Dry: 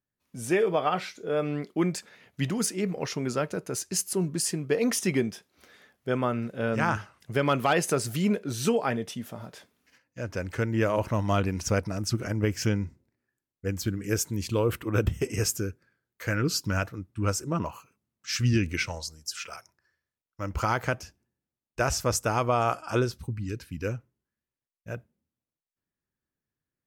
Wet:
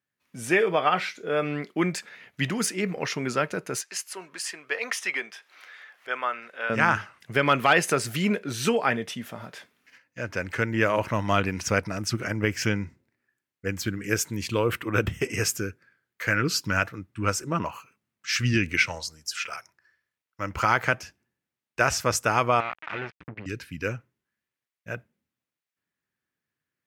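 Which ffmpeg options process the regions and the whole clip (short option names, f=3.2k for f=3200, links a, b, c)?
-filter_complex "[0:a]asettb=1/sr,asplit=3[a][b][c];[a]atrim=end=3.814[d];[b]atrim=start=3.81:end=6.7,asetpts=PTS-STARTPTS,afade=t=in:d=0.004:c=qsin,afade=t=out:st=2.886:d=0.004:c=qsin,highpass=840,aemphasis=mode=reproduction:type=cd,acompressor=mode=upward:threshold=-47dB:ratio=2.5:attack=3.2:release=140:knee=2.83:detection=peak[e];[c]atrim=start=6.696[f];[d][e]acrossfade=d=0.004:c1=hsin:c2=qsin[g];[g][f]acrossfade=d=0.004:c1=qsin:c2=hsin,asettb=1/sr,asplit=3[h][i][j];[h]atrim=end=22.604[k];[i]atrim=start=22.6:end=23.46,asetpts=PTS-STARTPTS,afade=t=in:d=0.004:c=qsin,afade=t=out:st=0.856:d=0.004:c=qsin,acompressor=threshold=-40dB:ratio=2.5:attack=3.2:release=140:knee=1:detection=peak,acrusher=bits=5:mix=0:aa=0.5,lowpass=f=2.3k:t=q:w=1.9[l];[j]atrim=start=23.456[m];[k][l]acrossfade=d=0.004:c1=hsin:c2=qsin[n];[n][m]acrossfade=d=0.004:c1=qsin:c2=hsin,highpass=95,equalizer=f=2k:w=0.75:g=9"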